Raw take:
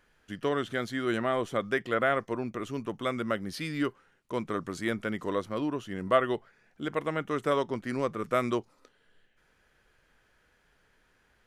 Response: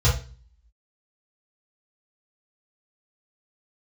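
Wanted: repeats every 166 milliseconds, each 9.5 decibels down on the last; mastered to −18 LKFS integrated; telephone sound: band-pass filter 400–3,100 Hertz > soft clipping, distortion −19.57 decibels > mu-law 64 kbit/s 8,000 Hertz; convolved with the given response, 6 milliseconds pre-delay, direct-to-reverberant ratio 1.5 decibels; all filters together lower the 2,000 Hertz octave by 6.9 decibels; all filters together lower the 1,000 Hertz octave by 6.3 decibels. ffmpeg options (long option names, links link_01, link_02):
-filter_complex "[0:a]equalizer=frequency=1000:width_type=o:gain=-6,equalizer=frequency=2000:width_type=o:gain=-6,aecho=1:1:166|332|498|664:0.335|0.111|0.0365|0.012,asplit=2[link_01][link_02];[1:a]atrim=start_sample=2205,adelay=6[link_03];[link_02][link_03]afir=irnorm=-1:irlink=0,volume=-16dB[link_04];[link_01][link_04]amix=inputs=2:normalize=0,highpass=400,lowpass=3100,asoftclip=threshold=-19dB,volume=15dB" -ar 8000 -c:a pcm_mulaw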